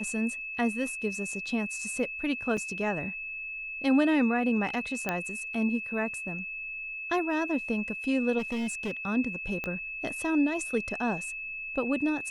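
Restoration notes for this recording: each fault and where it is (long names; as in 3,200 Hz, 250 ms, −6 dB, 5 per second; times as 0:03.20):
whistle 2,600 Hz −35 dBFS
0:02.57: drop-out 3.7 ms
0:05.09: click −14 dBFS
0:08.38–0:08.91: clipping −28 dBFS
0:09.64: click −19 dBFS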